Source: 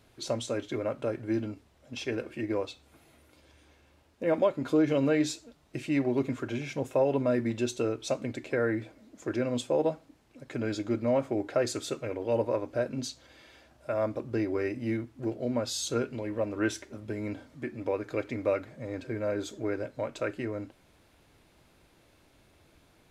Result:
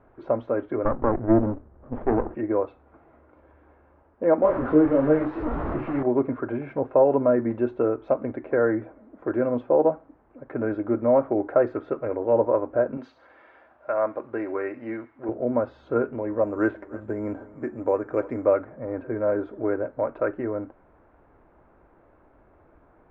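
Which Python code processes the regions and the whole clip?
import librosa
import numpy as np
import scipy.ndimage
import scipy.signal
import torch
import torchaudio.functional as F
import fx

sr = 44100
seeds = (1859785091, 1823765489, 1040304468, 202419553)

y = fx.chain(x, sr, fx.low_shelf(hz=430.0, db=10.5),
    fx.running_max(window=33), at=(0.85, 2.35))
y = fx.chain(y, sr, fx.delta_mod(bps=64000, step_db=-26.0),
    fx.low_shelf(hz=400.0, db=6.0),
    fx.detune_double(cents=33), at=(4.42, 6.03))
y = fx.chain(y, sr, fx.tilt_eq(slope=4.0),
    fx.echo_wet_highpass(ms=67, feedback_pct=45, hz=2800.0, wet_db=-9.0), at=(12.97, 15.29))
y = fx.chain(y, sr, fx.echo_single(ms=315, db=-18.5),
    fx.resample_bad(factor=6, down='filtered', up='zero_stuff'), at=(16.43, 18.45))
y = scipy.signal.sosfilt(scipy.signal.butter(4, 1400.0, 'lowpass', fs=sr, output='sos'), y)
y = fx.peak_eq(y, sr, hz=130.0, db=-9.0, octaves=2.0)
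y = y * 10.0 ** (9.0 / 20.0)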